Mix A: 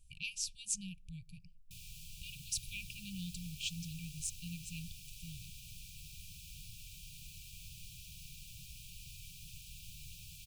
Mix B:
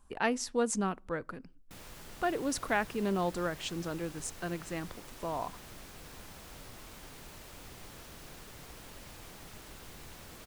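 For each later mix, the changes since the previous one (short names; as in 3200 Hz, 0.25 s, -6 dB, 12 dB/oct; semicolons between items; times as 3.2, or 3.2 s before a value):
master: remove brick-wall FIR band-stop 180–2300 Hz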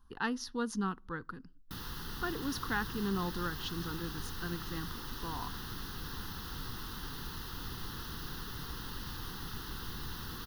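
background +9.5 dB; master: add fixed phaser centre 2300 Hz, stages 6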